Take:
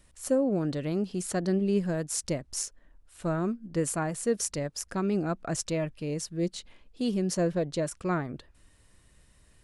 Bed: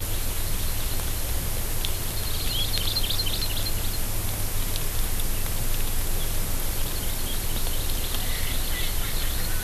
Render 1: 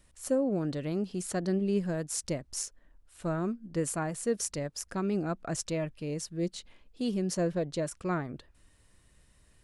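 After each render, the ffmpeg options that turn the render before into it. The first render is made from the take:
-af "volume=0.75"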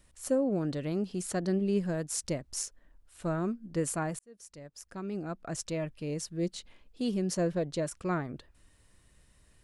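-filter_complex "[0:a]asplit=2[s0][s1];[s0]atrim=end=4.19,asetpts=PTS-STARTPTS,afade=t=out:st=4.186:d=0.004:c=hsin[s2];[s1]atrim=start=4.19,asetpts=PTS-STARTPTS,afade=t=in:d=1.9[s3];[s2][s3]concat=n=2:v=0:a=1"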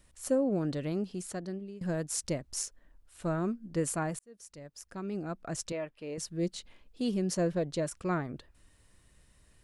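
-filter_complex "[0:a]asettb=1/sr,asplit=3[s0][s1][s2];[s0]atrim=end=5.724[s3];[s1]atrim=start=5.72:end=6.18,asetpts=PTS-STARTPTS,afade=t=in:d=0.004:c=qsin,afade=t=out:st=0.456:d=0.004:c=qsin,bass=f=250:g=-15,treble=f=4000:g=-10[s4];[s2]atrim=start=6.176[s5];[s3][s4]acrossfade=d=0.004:c1=hsin:c2=qsin[s6];[s6][s5]acrossfade=d=0.004:c1=qsin:c2=hsin,asplit=2[s7][s8];[s7]atrim=end=1.81,asetpts=PTS-STARTPTS,afade=t=out:st=0.84:d=0.97:silence=0.0749894[s9];[s8]atrim=start=1.81,asetpts=PTS-STARTPTS,afade=t=in:d=0.004:c=hsin:silence=0.0749894[s10];[s9][s10]concat=n=2:v=0:a=1"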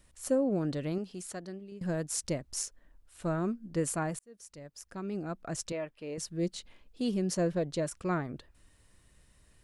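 -filter_complex "[0:a]asettb=1/sr,asplit=3[s0][s1][s2];[s0]atrim=end=0.984[s3];[s1]atrim=start=0.98:end=1.72,asetpts=PTS-STARTPTS,afade=t=in:d=0.004:c=qsin,afade=t=out:st=0.736:d=0.004:c=qsin,lowshelf=f=450:g=-6[s4];[s2]atrim=start=1.716[s5];[s3][s4]acrossfade=d=0.004:c1=hsin:c2=qsin[s6];[s6][s5]acrossfade=d=0.004:c1=qsin:c2=hsin"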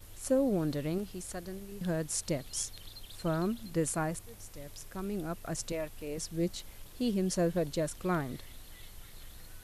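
-filter_complex "[1:a]volume=0.0668[s0];[0:a][s0]amix=inputs=2:normalize=0"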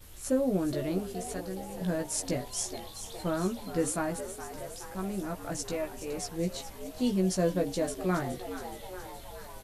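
-filter_complex "[0:a]asplit=2[s0][s1];[s1]adelay=16,volume=0.668[s2];[s0][s2]amix=inputs=2:normalize=0,asplit=2[s3][s4];[s4]asplit=8[s5][s6][s7][s8][s9][s10][s11][s12];[s5]adelay=420,afreqshift=94,volume=0.266[s13];[s6]adelay=840,afreqshift=188,volume=0.168[s14];[s7]adelay=1260,afreqshift=282,volume=0.106[s15];[s8]adelay=1680,afreqshift=376,volume=0.0668[s16];[s9]adelay=2100,afreqshift=470,volume=0.0417[s17];[s10]adelay=2520,afreqshift=564,volume=0.0263[s18];[s11]adelay=2940,afreqshift=658,volume=0.0166[s19];[s12]adelay=3360,afreqshift=752,volume=0.0105[s20];[s13][s14][s15][s16][s17][s18][s19][s20]amix=inputs=8:normalize=0[s21];[s3][s21]amix=inputs=2:normalize=0"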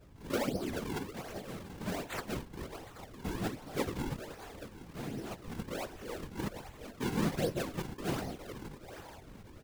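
-af "acrusher=samples=41:mix=1:aa=0.000001:lfo=1:lforange=65.6:lforate=1.3,afftfilt=real='hypot(re,im)*cos(2*PI*random(0))':imag='hypot(re,im)*sin(2*PI*random(1))':win_size=512:overlap=0.75"

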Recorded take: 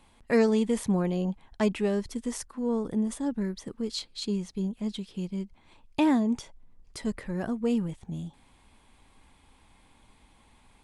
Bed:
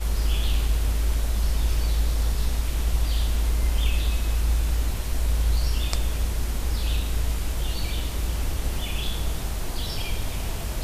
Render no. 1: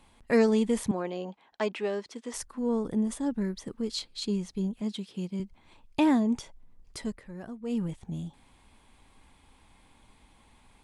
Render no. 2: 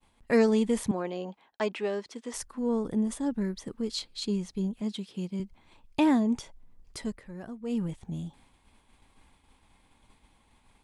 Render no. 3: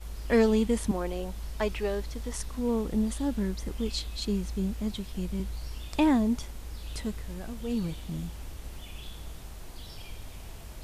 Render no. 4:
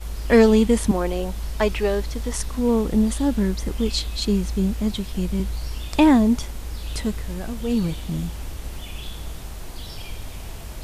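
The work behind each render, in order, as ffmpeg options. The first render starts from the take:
-filter_complex "[0:a]asettb=1/sr,asplit=3[s0][s1][s2];[s0]atrim=end=0.914[s3];[s1]atrim=start=0.91:end=2.34,asetpts=PTS-STARTPTS,afade=t=in:d=0.004:c=qsin,afade=t=out:st=1.426:d=0.004:c=qsin,highpass=380,lowpass=5400[s4];[s2]atrim=start=2.336[s5];[s3][s4]acrossfade=d=0.004:c1=hsin:c2=qsin[s6];[s6][s5]acrossfade=d=0.004:c1=qsin:c2=hsin,asettb=1/sr,asplit=3[s7][s8][s9];[s7]atrim=end=4.814[s10];[s8]atrim=start=4.81:end=5.4,asetpts=PTS-STARTPTS,afade=t=in:d=0.004:c=qsin,afade=t=out:st=0.586:d=0.004:c=qsin,highpass=130[s11];[s9]atrim=start=5.396[s12];[s10][s11]acrossfade=d=0.004:c1=hsin:c2=qsin[s13];[s13][s12]acrossfade=d=0.004:c1=qsin:c2=hsin,asplit=3[s14][s15][s16];[s14]atrim=end=7.18,asetpts=PTS-STARTPTS,afade=t=out:st=6.99:d=0.19:silence=0.316228[s17];[s15]atrim=start=7.18:end=7.65,asetpts=PTS-STARTPTS,volume=0.316[s18];[s16]atrim=start=7.65,asetpts=PTS-STARTPTS,afade=t=in:d=0.19:silence=0.316228[s19];[s17][s18][s19]concat=n=3:v=0:a=1"
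-af "agate=range=0.0224:threshold=0.002:ratio=3:detection=peak"
-filter_complex "[1:a]volume=0.188[s0];[0:a][s0]amix=inputs=2:normalize=0"
-af "volume=2.66"

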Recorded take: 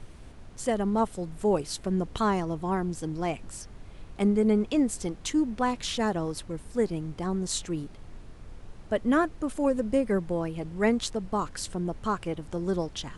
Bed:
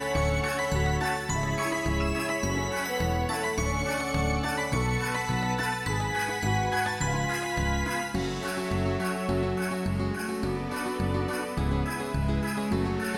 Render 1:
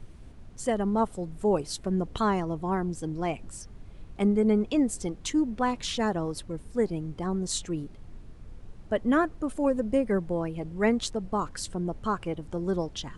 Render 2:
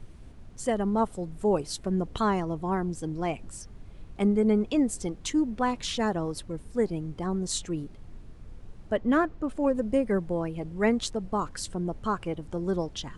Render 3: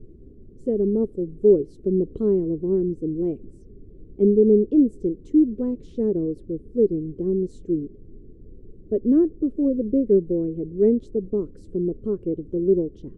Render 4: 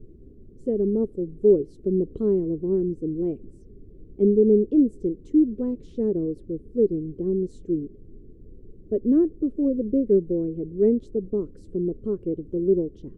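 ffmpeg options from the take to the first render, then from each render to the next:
-af "afftdn=nr=6:nf=-47"
-filter_complex "[0:a]asettb=1/sr,asplit=3[s0][s1][s2];[s0]atrim=end=8.964[s3];[s1]atrim=start=8.96:end=9.75,asetpts=PTS-STARTPTS,afade=t=in:d=0.004:c=qsin,afade=t=out:st=0.786:d=0.004:c=qsin,adynamicsmooth=sensitivity=7.5:basefreq=5700[s4];[s2]atrim=start=9.746[s5];[s3][s4]acrossfade=d=0.004:c1=hsin:c2=qsin[s6];[s6][s5]acrossfade=d=0.004:c1=qsin:c2=hsin"
-af "firequalizer=gain_entry='entry(130,0);entry(400,13);entry(740,-23);entry(1500,-28)':delay=0.05:min_phase=1"
-af "volume=0.841"

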